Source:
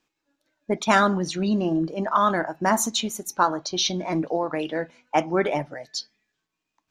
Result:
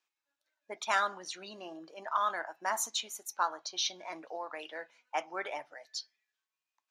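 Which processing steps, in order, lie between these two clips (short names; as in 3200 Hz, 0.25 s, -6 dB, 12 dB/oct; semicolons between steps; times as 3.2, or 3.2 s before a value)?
HPF 800 Hz 12 dB/oct; gain -8.5 dB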